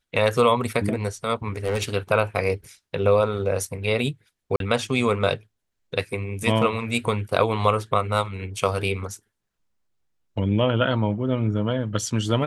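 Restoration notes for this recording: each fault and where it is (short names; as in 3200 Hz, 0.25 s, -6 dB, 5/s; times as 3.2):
1.48–1.89 clipped -19 dBFS
4.56–4.6 gap 42 ms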